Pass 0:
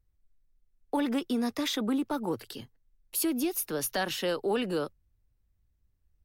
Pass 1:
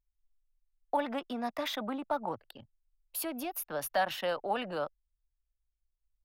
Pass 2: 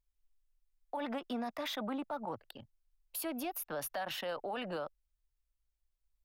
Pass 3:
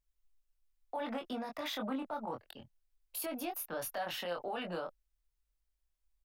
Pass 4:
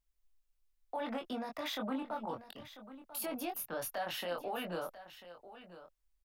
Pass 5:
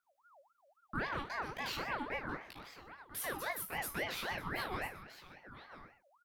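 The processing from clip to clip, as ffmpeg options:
ffmpeg -i in.wav -af "equalizer=frequency=7200:width=0.64:gain=-10.5,anlmdn=0.158,lowshelf=frequency=510:width_type=q:width=3:gain=-7" out.wav
ffmpeg -i in.wav -af "alimiter=level_in=6dB:limit=-24dB:level=0:latency=1:release=43,volume=-6dB" out.wav
ffmpeg -i in.wav -filter_complex "[0:a]asplit=2[link_01][link_02];[link_02]adelay=23,volume=-4dB[link_03];[link_01][link_03]amix=inputs=2:normalize=0,volume=-1.5dB" out.wav
ffmpeg -i in.wav -af "aecho=1:1:993:0.188" out.wav
ffmpeg -i in.wav -af "aecho=1:1:55|123:0.282|0.178,flanger=delay=15.5:depth=2.1:speed=0.41,aeval=exprs='val(0)*sin(2*PI*990*n/s+990*0.45/3.7*sin(2*PI*3.7*n/s))':channel_layout=same,volume=5dB" out.wav

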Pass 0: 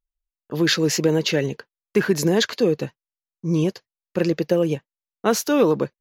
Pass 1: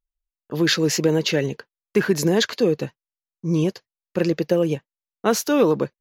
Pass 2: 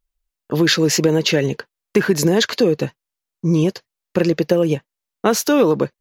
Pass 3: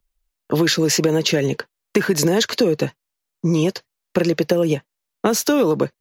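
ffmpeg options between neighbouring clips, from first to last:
ffmpeg -i in.wav -af anull out.wav
ffmpeg -i in.wav -af "acompressor=threshold=-24dB:ratio=2,volume=8.5dB" out.wav
ffmpeg -i in.wav -filter_complex "[0:a]acrossover=split=120|500|5300[link_01][link_02][link_03][link_04];[link_01]acompressor=threshold=-41dB:ratio=4[link_05];[link_02]acompressor=threshold=-21dB:ratio=4[link_06];[link_03]acompressor=threshold=-25dB:ratio=4[link_07];[link_04]acompressor=threshold=-25dB:ratio=4[link_08];[link_05][link_06][link_07][link_08]amix=inputs=4:normalize=0,volume=3.5dB" out.wav

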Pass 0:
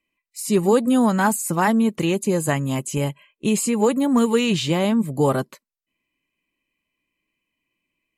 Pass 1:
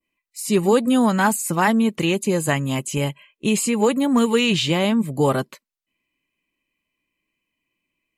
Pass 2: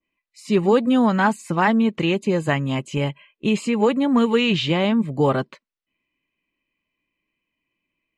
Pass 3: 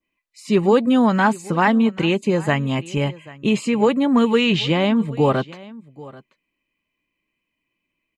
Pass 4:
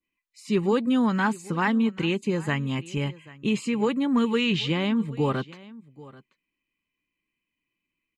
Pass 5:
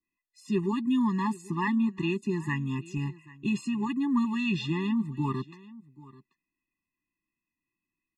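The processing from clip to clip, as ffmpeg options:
ffmpeg -i in.wav -af "adynamicequalizer=threshold=0.0112:dfrequency=2800:dqfactor=0.89:tfrequency=2800:tqfactor=0.89:attack=5:release=100:ratio=0.375:range=2.5:mode=boostabove:tftype=bell" out.wav
ffmpeg -i in.wav -af "lowpass=3700" out.wav
ffmpeg -i in.wav -af "aecho=1:1:786:0.0944,volume=1.5dB" out.wav
ffmpeg -i in.wav -af "equalizer=frequency=650:width_type=o:width=0.67:gain=-9,volume=-5.5dB" out.wav
ffmpeg -i in.wav -af "afftfilt=real='re*eq(mod(floor(b*sr/1024/410),2),0)':imag='im*eq(mod(floor(b*sr/1024/410),2),0)':win_size=1024:overlap=0.75,volume=-3dB" out.wav

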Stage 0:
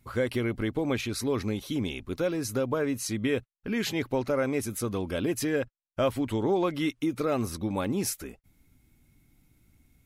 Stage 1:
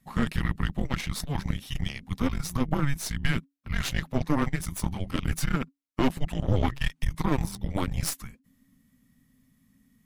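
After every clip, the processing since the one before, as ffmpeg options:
ffmpeg -i in.wav -af "afreqshift=-280,aeval=exprs='0.224*(cos(1*acos(clip(val(0)/0.224,-1,1)))-cos(1*PI/2))+0.0355*(cos(6*acos(clip(val(0)/0.224,-1,1)))-cos(6*PI/2))+0.00794*(cos(7*acos(clip(val(0)/0.224,-1,1)))-cos(7*PI/2))':channel_layout=same,volume=1dB" out.wav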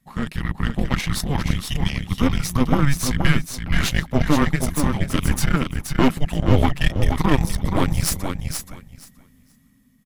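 ffmpeg -i in.wav -filter_complex "[0:a]dynaudnorm=framelen=180:gausssize=7:maxgain=8dB,asplit=2[link_01][link_02];[link_02]aecho=0:1:475|950|1425:0.501|0.0802|0.0128[link_03];[link_01][link_03]amix=inputs=2:normalize=0" out.wav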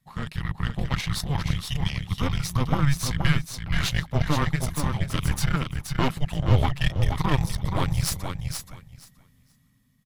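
ffmpeg -i in.wav -af "equalizer=frequency=125:width_type=o:width=1:gain=8,equalizer=frequency=250:width_type=o:width=1:gain=-7,equalizer=frequency=1000:width_type=o:width=1:gain=3,equalizer=frequency=4000:width_type=o:width=1:gain=5,volume=-6.5dB" out.wav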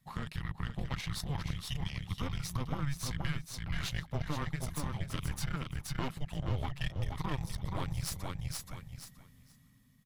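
ffmpeg -i in.wav -af "acompressor=threshold=-37dB:ratio=2.5" out.wav

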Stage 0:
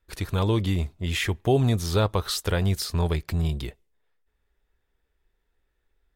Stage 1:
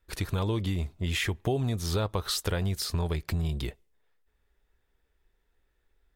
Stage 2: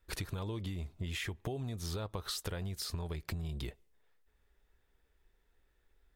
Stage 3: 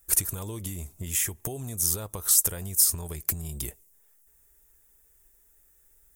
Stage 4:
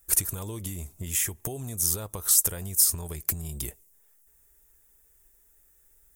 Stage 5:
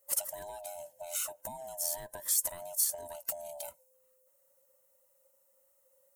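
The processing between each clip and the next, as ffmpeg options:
ffmpeg -i in.wav -af "acompressor=threshold=-27dB:ratio=4,volume=1dB" out.wav
ffmpeg -i in.wav -af "acompressor=threshold=-36dB:ratio=6" out.wav
ffmpeg -i in.wav -af "aexciter=amount=11.6:drive=6.8:freq=6200,volume=2.5dB" out.wav
ffmpeg -i in.wav -af anull out.wav
ffmpeg -i in.wav -af "afftfilt=real='real(if(lt(b,1008),b+24*(1-2*mod(floor(b/24),2)),b),0)':imag='imag(if(lt(b,1008),b+24*(1-2*mod(floor(b/24),2)),b),0)':win_size=2048:overlap=0.75,volume=-8.5dB" out.wav

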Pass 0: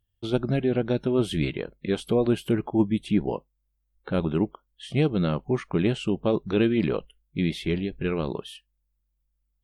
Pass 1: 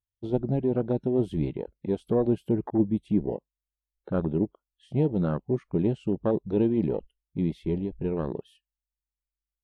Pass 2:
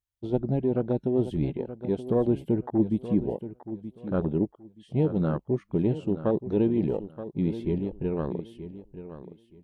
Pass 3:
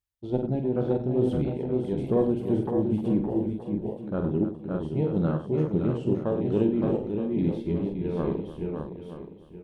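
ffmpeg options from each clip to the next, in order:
ffmpeg -i in.wav -af "afwtdn=0.0316,volume=-1.5dB" out.wav
ffmpeg -i in.wav -af "aecho=1:1:926|1852|2778:0.237|0.0522|0.0115" out.wav
ffmpeg -i in.wav -af "aecho=1:1:47|97|306|566|605:0.447|0.299|0.237|0.531|0.422,tremolo=f=2.3:d=0.32" out.wav

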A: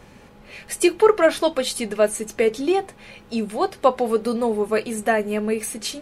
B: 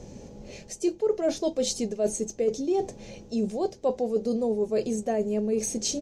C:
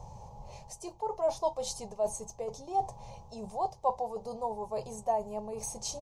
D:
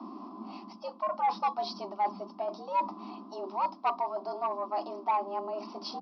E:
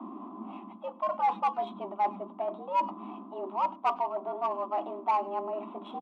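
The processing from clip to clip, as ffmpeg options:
ffmpeg -i in.wav -af "firequalizer=gain_entry='entry(540,0);entry(1200,-19);entry(4000,-8);entry(6300,5);entry(9700,-17)':delay=0.05:min_phase=1,areverse,acompressor=threshold=-29dB:ratio=4,areverse,volume=4.5dB" out.wav
ffmpeg -i in.wav -af "firequalizer=gain_entry='entry(130,0);entry(250,-24);entry(920,14);entry(1500,-15);entry(2100,-12);entry(4800,-8)':delay=0.05:min_phase=1,aexciter=amount=1.6:drive=7.2:freq=9200" out.wav
ffmpeg -i in.wav -af "aresample=11025,asoftclip=type=tanh:threshold=-24dB,aresample=44100,afreqshift=190,volume=3.5dB" out.wav
ffmpeg -i in.wav -filter_complex "[0:a]aresample=8000,aresample=44100,asplit=2[link_01][link_02];[link_02]adelay=100,highpass=300,lowpass=3400,asoftclip=type=hard:threshold=-26.5dB,volume=-22dB[link_03];[link_01][link_03]amix=inputs=2:normalize=0,adynamicsmooth=sensitivity=4.5:basefreq=3100,volume=1.5dB" out.wav

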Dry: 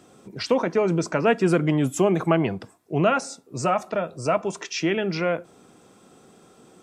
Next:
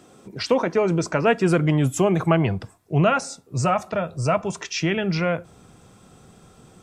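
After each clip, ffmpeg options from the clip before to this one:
ffmpeg -i in.wav -af "asubboost=boost=7.5:cutoff=110,volume=2dB" out.wav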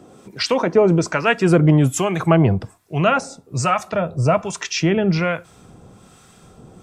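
ffmpeg -i in.wav -filter_complex "[0:a]acrossover=split=1000[link_01][link_02];[link_01]aeval=exprs='val(0)*(1-0.7/2+0.7/2*cos(2*PI*1.2*n/s))':channel_layout=same[link_03];[link_02]aeval=exprs='val(0)*(1-0.7/2-0.7/2*cos(2*PI*1.2*n/s))':channel_layout=same[link_04];[link_03][link_04]amix=inputs=2:normalize=0,volume=7dB" out.wav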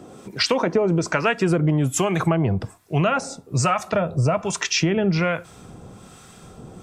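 ffmpeg -i in.wav -af "acompressor=threshold=-19dB:ratio=10,volume=3dB" out.wav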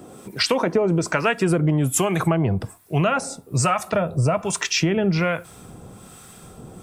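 ffmpeg -i in.wav -af "aexciter=amount=3:drive=5.5:freq=8600" out.wav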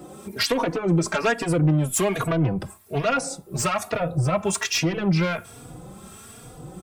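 ffmpeg -i in.wav -filter_complex "[0:a]aeval=exprs='0.562*(cos(1*acos(clip(val(0)/0.562,-1,1)))-cos(1*PI/2))+0.282*(cos(5*acos(clip(val(0)/0.562,-1,1)))-cos(5*PI/2))':channel_layout=same,asplit=2[link_01][link_02];[link_02]adelay=3.5,afreqshift=1.2[link_03];[link_01][link_03]amix=inputs=2:normalize=1,volume=-7.5dB" out.wav

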